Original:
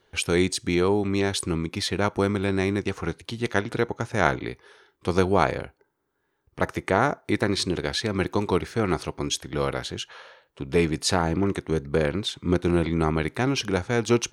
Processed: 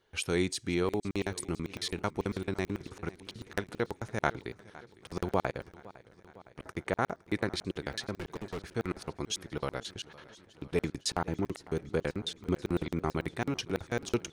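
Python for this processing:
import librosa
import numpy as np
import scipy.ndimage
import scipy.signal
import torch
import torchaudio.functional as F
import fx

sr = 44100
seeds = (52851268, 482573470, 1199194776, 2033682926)

y = fx.overload_stage(x, sr, gain_db=27.0, at=(8.18, 8.71))
y = fx.buffer_crackle(y, sr, first_s=0.89, period_s=0.11, block=2048, kind='zero')
y = fx.echo_warbled(y, sr, ms=509, feedback_pct=69, rate_hz=2.8, cents=93, wet_db=-20.5)
y = y * librosa.db_to_amplitude(-7.5)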